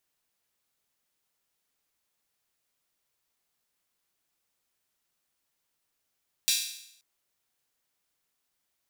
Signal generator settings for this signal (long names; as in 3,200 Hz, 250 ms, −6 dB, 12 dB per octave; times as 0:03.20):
open synth hi-hat length 0.53 s, high-pass 3,500 Hz, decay 0.74 s